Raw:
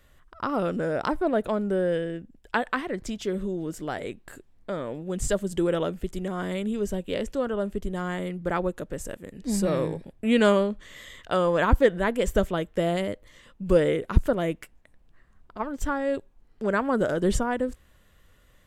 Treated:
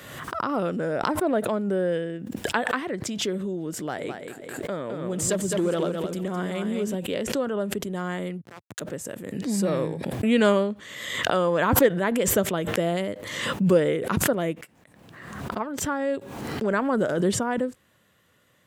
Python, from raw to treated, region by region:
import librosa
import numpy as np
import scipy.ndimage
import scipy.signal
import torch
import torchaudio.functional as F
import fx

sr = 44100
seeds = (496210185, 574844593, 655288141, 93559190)

y = fx.chain(x, sr, fx.clip_hard(threshold_db=-19.5),
    fx.echo_feedback(ms=211, feedback_pct=22, wet_db=-6.0), at=(3.83, 6.95))
y = fx.chain(y, sr, fx.over_compress(threshold_db=-34.0, ratio=-1.0),
    fx.bandpass_q(hz=6600.0, q=1.1),
    fx.backlash(play_db=-44.5), at=(8.41, 8.81))
y = scipy.signal.sosfilt(scipy.signal.butter(4, 110.0, 'highpass', fs=sr, output='sos'), y)
y = fx.pre_swell(y, sr, db_per_s=43.0)